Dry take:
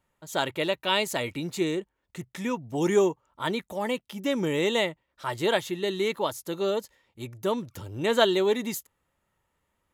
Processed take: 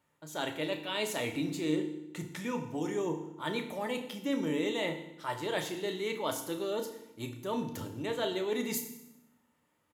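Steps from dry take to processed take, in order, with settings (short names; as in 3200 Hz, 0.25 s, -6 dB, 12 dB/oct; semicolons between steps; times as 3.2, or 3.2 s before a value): HPF 120 Hz; reverse; compressor 6:1, threshold -32 dBFS, peak gain reduction 15.5 dB; reverse; doubler 33 ms -13 dB; FDN reverb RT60 0.86 s, low-frequency decay 1.45×, high-frequency decay 0.95×, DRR 5 dB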